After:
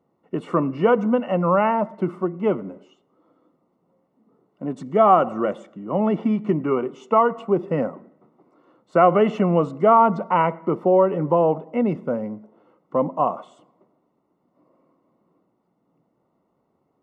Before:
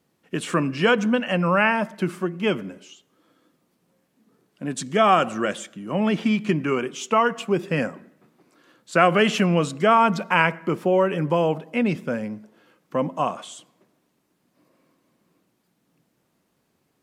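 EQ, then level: Savitzky-Golay filter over 65 samples; bass shelf 260 Hz -8 dB; +5.0 dB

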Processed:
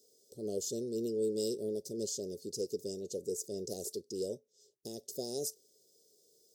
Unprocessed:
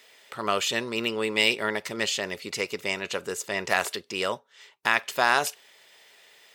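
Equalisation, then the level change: elliptic band-stop 450–5400 Hz, stop band 50 dB; peaking EQ 440 Hz +3.5 dB 1.1 oct; -5.5 dB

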